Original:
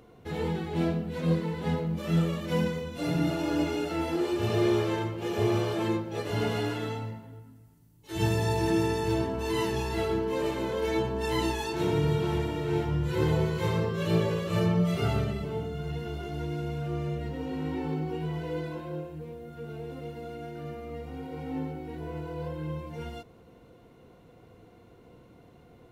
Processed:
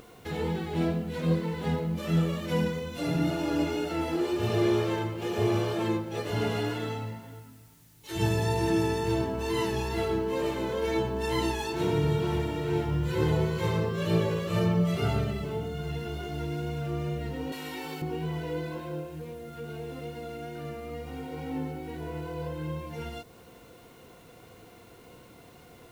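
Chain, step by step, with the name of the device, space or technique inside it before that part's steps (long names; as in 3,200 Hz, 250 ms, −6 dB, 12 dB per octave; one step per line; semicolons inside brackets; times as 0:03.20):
0:17.52–0:18.02: spectral tilt +4.5 dB per octave
noise-reduction cassette on a plain deck (one half of a high-frequency compander encoder only; tape wow and flutter 15 cents; white noise bed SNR 34 dB)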